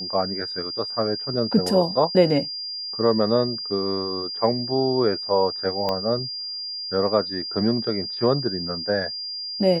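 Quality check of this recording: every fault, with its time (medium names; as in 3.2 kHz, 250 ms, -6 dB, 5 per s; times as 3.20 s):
whine 4.8 kHz -29 dBFS
5.89 s: pop -12 dBFS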